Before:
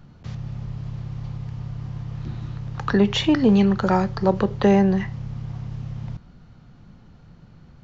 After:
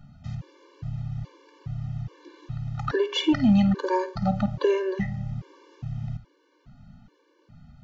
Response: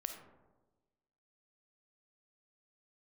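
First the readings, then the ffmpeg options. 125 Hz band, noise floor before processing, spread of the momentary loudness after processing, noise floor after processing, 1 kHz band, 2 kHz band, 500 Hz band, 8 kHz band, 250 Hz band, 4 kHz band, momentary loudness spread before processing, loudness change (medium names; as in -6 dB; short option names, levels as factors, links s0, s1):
-4.0 dB, -49 dBFS, 19 LU, -65 dBFS, -5.0 dB, -4.5 dB, -4.0 dB, no reading, -4.5 dB, -3.0 dB, 16 LU, -4.0 dB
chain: -filter_complex "[0:a]asplit=2[s0][s1];[1:a]atrim=start_sample=2205,adelay=52[s2];[s1][s2]afir=irnorm=-1:irlink=0,volume=0.237[s3];[s0][s3]amix=inputs=2:normalize=0,afftfilt=real='re*gt(sin(2*PI*1.2*pts/sr)*(1-2*mod(floor(b*sr/1024/300),2)),0)':imag='im*gt(sin(2*PI*1.2*pts/sr)*(1-2*mod(floor(b*sr/1024/300),2)),0)':win_size=1024:overlap=0.75,volume=0.841"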